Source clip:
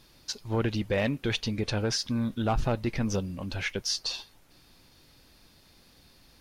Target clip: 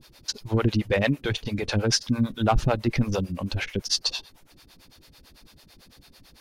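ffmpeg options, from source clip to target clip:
-filter_complex "[0:a]acrossover=split=420[a][b];[a]aeval=exprs='val(0)*(1-1/2+1/2*cos(2*PI*9*n/s))':c=same[c];[b]aeval=exprs='val(0)*(1-1/2-1/2*cos(2*PI*9*n/s))':c=same[d];[c][d]amix=inputs=2:normalize=0,volume=9dB"

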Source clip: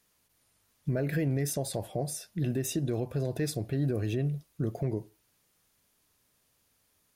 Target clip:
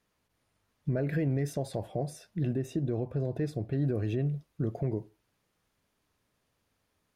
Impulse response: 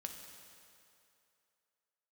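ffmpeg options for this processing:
-af "asetnsamples=n=441:p=0,asendcmd='2.53 lowpass f 1000;3.72 lowpass f 2200',lowpass=f=2k:p=1"

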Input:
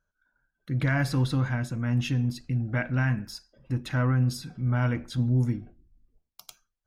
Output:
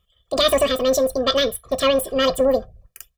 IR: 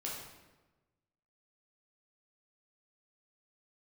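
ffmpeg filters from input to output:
-af "asetrate=95256,aresample=44100,aecho=1:1:1.7:0.94,volume=8.5dB"

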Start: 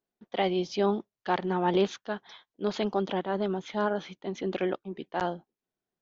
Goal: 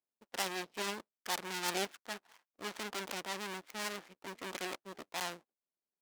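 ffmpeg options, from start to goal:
-filter_complex "[0:a]lowpass=1.8k,equalizer=f=250:t=o:w=1.3:g=7.5,asplit=2[a][b];[b]aeval=exprs='0.0422*(abs(mod(val(0)/0.0422+3,4)-2)-1)':c=same,volume=-3dB[c];[a][c]amix=inputs=2:normalize=0,adynamicsmooth=sensitivity=7:basefreq=620,aeval=exprs='max(val(0),0)':c=same,aderivative,volume=11dB"

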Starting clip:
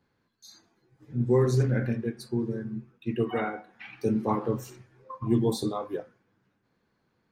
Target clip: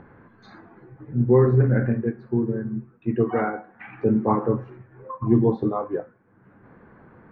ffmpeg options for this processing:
-af "lowpass=f=1.8k:w=0.5412,lowpass=f=1.8k:w=1.3066,acompressor=mode=upward:threshold=-40dB:ratio=2.5,volume=6dB"

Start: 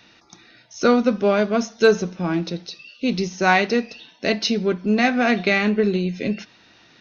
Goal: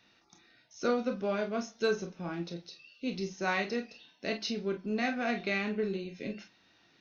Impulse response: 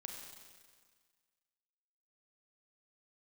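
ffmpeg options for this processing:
-filter_complex "[1:a]atrim=start_sample=2205,atrim=end_sample=3528,asetrate=66150,aresample=44100[a];[0:a][a]afir=irnorm=-1:irlink=0,volume=-4.5dB"

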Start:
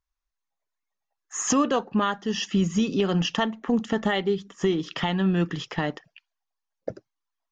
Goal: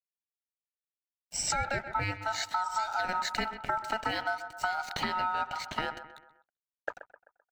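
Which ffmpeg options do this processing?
-filter_complex "[0:a]aeval=exprs='sgn(val(0))*max(abs(val(0))-0.00355,0)':c=same,asettb=1/sr,asplit=3[a][b][c];[a]atrim=end=2.884[d];[b]atrim=start=2.88:end=5.01,asetpts=PTS-STARTPTS,afade=t=in:d=0.004:c=qsin,afade=t=out:st=2.126:d=0.004:c=qsin,highshelf=f=6.7k:g=6[e];[c]atrim=start=5.006[f];[d][e]acrossfade=d=0.004:c1=hsin:c2=qsin[g];[g][f]acrossfade=d=0.004:c1=qsin:c2=hsin,asplit=2[h][i];[i]adelay=129,lowpass=f=1.3k:p=1,volume=-14dB,asplit=2[j][k];[k]adelay=129,lowpass=f=1.3k:p=1,volume=0.47,asplit=2[l][m];[m]adelay=129,lowpass=f=1.3k:p=1,volume=0.47,asplit=2[n][o];[o]adelay=129,lowpass=f=1.3k:p=1,volume=0.47[p];[h][j][l][n][p]amix=inputs=5:normalize=0,aeval=exprs='val(0)*sin(2*PI*1100*n/s)':c=same,bass=f=250:g=4,treble=f=4k:g=2,acompressor=threshold=-27dB:ratio=6"

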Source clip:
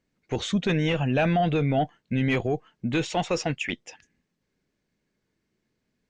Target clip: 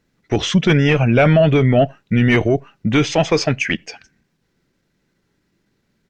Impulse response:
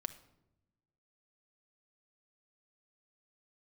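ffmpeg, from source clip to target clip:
-filter_complex "[0:a]asplit=2[a][b];[1:a]atrim=start_sample=2205,afade=t=out:st=0.16:d=0.01,atrim=end_sample=7497[c];[b][c]afir=irnorm=-1:irlink=0,volume=-11.5dB[d];[a][d]amix=inputs=2:normalize=0,asetrate=40440,aresample=44100,atempo=1.09051,volume=8.5dB"

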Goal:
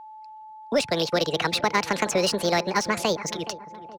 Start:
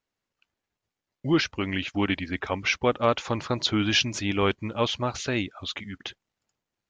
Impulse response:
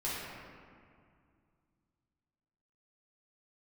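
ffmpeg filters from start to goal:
-filter_complex "[0:a]acrossover=split=80|230|1600[a][b][c][d];[a]acompressor=threshold=-51dB:ratio=4[e];[b]acompressor=threshold=-37dB:ratio=4[f];[c]acompressor=threshold=-29dB:ratio=4[g];[d]acompressor=threshold=-36dB:ratio=4[h];[e][f][g][h]amix=inputs=4:normalize=0,asplit=2[i][j];[j]adelay=731,lowpass=f=800:p=1,volume=-14.5dB,asplit=2[k][l];[l]adelay=731,lowpass=f=800:p=1,volume=0.49,asplit=2[m][n];[n]adelay=731,lowpass=f=800:p=1,volume=0.49,asplit=2[o][p];[p]adelay=731,lowpass=f=800:p=1,volume=0.49,asplit=2[q][r];[r]adelay=731,lowpass=f=800:p=1,volume=0.49[s];[i][k][m][o][q][s]amix=inputs=6:normalize=0,acrossover=split=170[t][u];[u]adynamicsmooth=sensitivity=6:basefreq=3.7k[v];[t][v]amix=inputs=2:normalize=0,aeval=exprs='val(0)+0.00398*sin(2*PI*500*n/s)':c=same,asetrate=76440,aresample=44100,volume=7.5dB"

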